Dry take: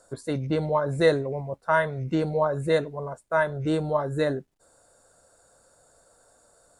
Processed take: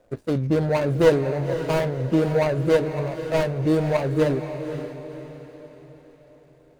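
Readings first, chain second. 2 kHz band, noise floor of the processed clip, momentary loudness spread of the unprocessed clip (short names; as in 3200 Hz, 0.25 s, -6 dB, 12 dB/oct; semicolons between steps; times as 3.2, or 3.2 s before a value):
-1.5 dB, -54 dBFS, 9 LU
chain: median filter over 41 samples; on a send: diffused feedback echo 0.53 s, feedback 43%, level -9.5 dB; on the sum: gain +5.5 dB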